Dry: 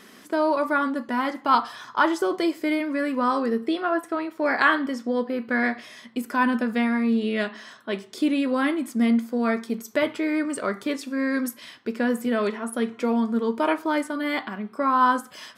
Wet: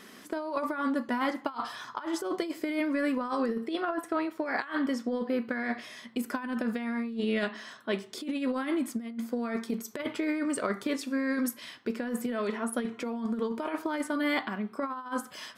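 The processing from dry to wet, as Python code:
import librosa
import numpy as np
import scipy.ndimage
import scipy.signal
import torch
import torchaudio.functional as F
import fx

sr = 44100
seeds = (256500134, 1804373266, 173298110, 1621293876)

y = fx.over_compress(x, sr, threshold_db=-25.0, ratio=-0.5)
y = F.gain(torch.from_numpy(y), -4.5).numpy()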